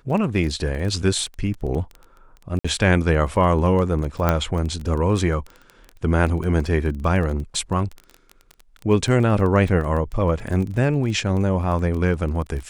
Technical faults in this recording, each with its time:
crackle 15/s -27 dBFS
2.59–2.65 gap 55 ms
4.29 pop -6 dBFS

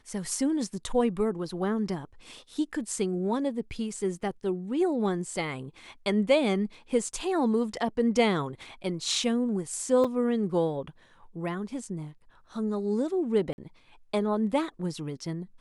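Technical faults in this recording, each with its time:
10.04 gap 4.9 ms
13.53–13.58 gap 51 ms

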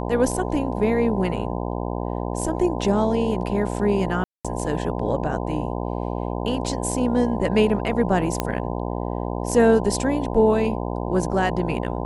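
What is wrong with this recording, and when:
buzz 60 Hz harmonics 17 -27 dBFS
4.24–4.45 gap 0.206 s
8.4 pop -7 dBFS

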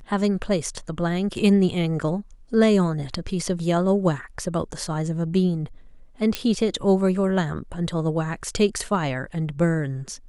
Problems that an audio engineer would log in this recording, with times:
6.35 pop -8 dBFS

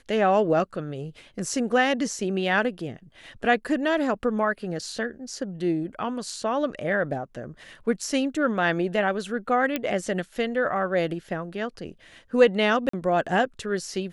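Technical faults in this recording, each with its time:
9.76 pop -11 dBFS
12.89–12.93 gap 44 ms

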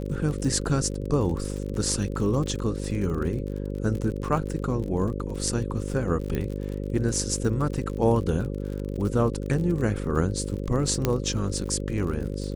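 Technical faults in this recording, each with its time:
buzz 50 Hz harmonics 11 -31 dBFS
crackle 50/s -32 dBFS
6.35 pop -16 dBFS
11.05 pop -8 dBFS

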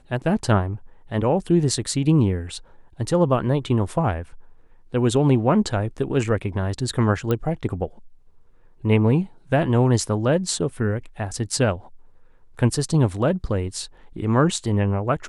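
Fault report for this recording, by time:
7.31 pop -11 dBFS

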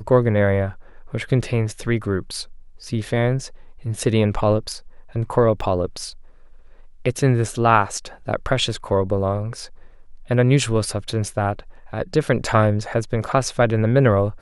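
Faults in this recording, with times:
5.61–5.62 gap 5.6 ms

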